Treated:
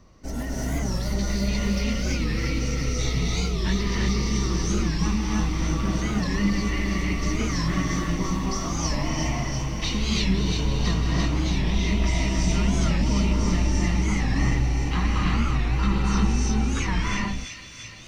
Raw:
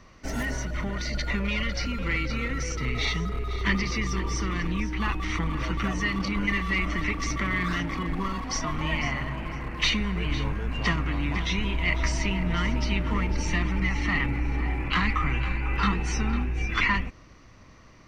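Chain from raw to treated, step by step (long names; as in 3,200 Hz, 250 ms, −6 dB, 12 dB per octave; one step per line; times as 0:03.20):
parametric band 2,000 Hz −10.5 dB 2 octaves
delay with a high-pass on its return 341 ms, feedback 75%, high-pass 3,300 Hz, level −3 dB
reverb whose tail is shaped and stops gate 380 ms rising, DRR −4 dB
wow of a warped record 45 rpm, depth 160 cents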